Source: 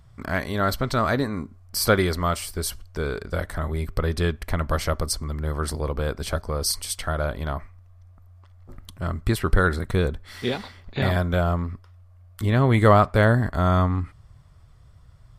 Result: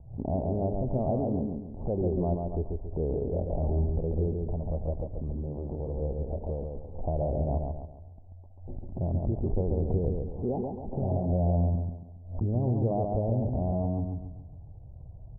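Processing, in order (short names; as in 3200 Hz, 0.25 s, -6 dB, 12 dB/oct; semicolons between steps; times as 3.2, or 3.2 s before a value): steep low-pass 840 Hz 72 dB/oct; compressor 2:1, threshold -28 dBFS, peak gain reduction 9.5 dB; limiter -24 dBFS, peak gain reduction 9.5 dB; 4.35–6.83 resonator 460 Hz, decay 0.62 s, mix 40%; feedback echo 0.138 s, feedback 40%, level -4 dB; backwards sustainer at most 110 dB/s; gain +3 dB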